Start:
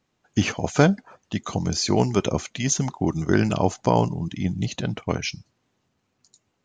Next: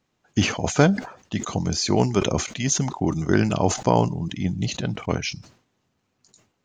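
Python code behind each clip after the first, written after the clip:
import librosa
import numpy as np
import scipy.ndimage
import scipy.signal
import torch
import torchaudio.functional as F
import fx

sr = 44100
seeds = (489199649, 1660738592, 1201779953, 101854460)

y = fx.sustainer(x, sr, db_per_s=120.0)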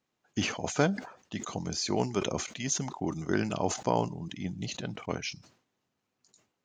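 y = fx.low_shelf(x, sr, hz=110.0, db=-11.5)
y = y * 10.0 ** (-7.5 / 20.0)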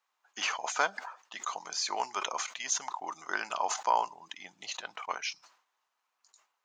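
y = fx.highpass_res(x, sr, hz=1000.0, q=2.3)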